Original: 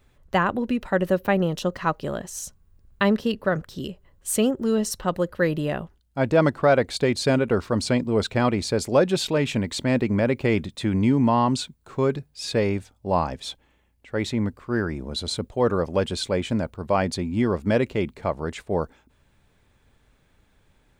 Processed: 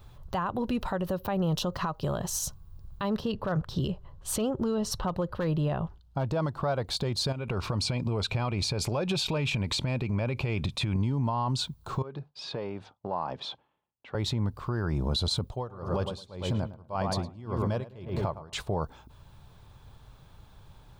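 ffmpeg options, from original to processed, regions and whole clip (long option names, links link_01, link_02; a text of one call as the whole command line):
ffmpeg -i in.wav -filter_complex "[0:a]asettb=1/sr,asplit=3[link_01][link_02][link_03];[link_01]atrim=end=3.204[link_04];[link_02]atrim=start=3.2:end=6.25,asetpts=PTS-STARTPTS,afade=type=in:duration=0.004:curve=qsin,afade=type=out:start_time=3.046:duration=0.004:curve=qsin,aemphasis=mode=reproduction:type=50kf,aeval=exprs='clip(val(0),-1,0.15)':channel_layout=same[link_05];[link_03]atrim=start=6.246[link_06];[link_04][link_05]acrossfade=duration=0.004:curve1=hsin:curve2=qsin[link_07];[link_07][link_06]acrossfade=duration=0.004:curve1=qsin:curve2=hsin,asettb=1/sr,asplit=3[link_08][link_09][link_10];[link_08]atrim=end=7.324[link_11];[link_09]atrim=start=7.32:end=10.96,asetpts=PTS-STARTPTS,afade=type=in:duration=0.004:curve=qsin,afade=type=out:start_time=3.636:duration=0.004:curve=qsin,lowpass=12000,acompressor=threshold=-30dB:ratio=6:attack=3.2:release=140:knee=1:detection=peak,equalizer=frequency=2400:width=5.1:gain=12.5[link_12];[link_10]atrim=start=10.956[link_13];[link_11][link_12]acrossfade=duration=0.004:curve1=hsin:curve2=qsin[link_14];[link_14][link_13]acrossfade=duration=0.004:curve1=qsin:curve2=hsin,asettb=1/sr,asplit=3[link_15][link_16][link_17];[link_15]atrim=end=12.024[link_18];[link_16]atrim=start=12.02:end=14.15,asetpts=PTS-STARTPTS,afade=type=in:duration=0.004:curve=qsin,afade=type=out:start_time=2.126:duration=0.004:curve=qsin,agate=range=-33dB:threshold=-53dB:ratio=3:release=100:detection=peak,acompressor=threshold=-33dB:ratio=20:attack=3.2:release=140:knee=1:detection=peak,highpass=230,lowpass=2800[link_19];[link_17]atrim=start=14.146[link_20];[link_18][link_19]acrossfade=duration=0.004:curve1=hsin:curve2=qsin[link_21];[link_21][link_20]acrossfade=duration=0.004:curve1=qsin:curve2=hsin,asettb=1/sr,asplit=3[link_22][link_23][link_24];[link_22]atrim=end=15.454[link_25];[link_23]atrim=start=15.45:end=18.53,asetpts=PTS-STARTPTS,afade=type=in:duration=0.004:curve=qsin,afade=type=out:start_time=3.076:duration=0.004:curve=qsin,asplit=2[link_26][link_27];[link_27]adelay=109,lowpass=frequency=2300:poles=1,volume=-7dB,asplit=2[link_28][link_29];[link_29]adelay=109,lowpass=frequency=2300:poles=1,volume=0.51,asplit=2[link_30][link_31];[link_31]adelay=109,lowpass=frequency=2300:poles=1,volume=0.51,asplit=2[link_32][link_33];[link_33]adelay=109,lowpass=frequency=2300:poles=1,volume=0.51,asplit=2[link_34][link_35];[link_35]adelay=109,lowpass=frequency=2300:poles=1,volume=0.51,asplit=2[link_36][link_37];[link_37]adelay=109,lowpass=frequency=2300:poles=1,volume=0.51[link_38];[link_26][link_28][link_30][link_32][link_34][link_36][link_38]amix=inputs=7:normalize=0,atrim=end_sample=135828,aeval=exprs='val(0)*pow(10,-30*(0.5-0.5*cos(2*PI*1.8*n/s))/20)':channel_layout=same[link_39];[link_24]atrim=start=18.526[link_40];[link_25][link_39]acrossfade=duration=0.004:curve1=hsin:curve2=qsin[link_41];[link_41][link_40]acrossfade=duration=0.004:curve1=qsin:curve2=hsin,equalizer=frequency=125:width_type=o:width=1:gain=6,equalizer=frequency=250:width_type=o:width=1:gain=-8,equalizer=frequency=500:width_type=o:width=1:gain=-4,equalizer=frequency=1000:width_type=o:width=1:gain=5,equalizer=frequency=2000:width_type=o:width=1:gain=-12,equalizer=frequency=4000:width_type=o:width=1:gain=3,equalizer=frequency=8000:width_type=o:width=1:gain=-7,acompressor=threshold=-30dB:ratio=6,alimiter=level_in=5.5dB:limit=-24dB:level=0:latency=1:release=80,volume=-5.5dB,volume=9dB" out.wav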